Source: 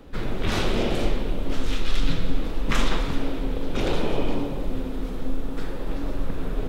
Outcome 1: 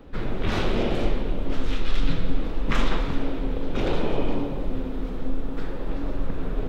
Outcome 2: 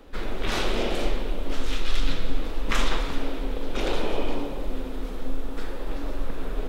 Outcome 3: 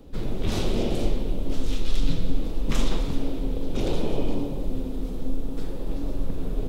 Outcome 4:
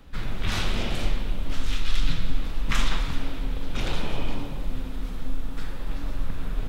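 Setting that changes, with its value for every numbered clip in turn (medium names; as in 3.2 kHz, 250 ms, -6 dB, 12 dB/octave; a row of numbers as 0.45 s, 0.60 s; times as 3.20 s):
peaking EQ, frequency: 11 kHz, 120 Hz, 1.6 kHz, 410 Hz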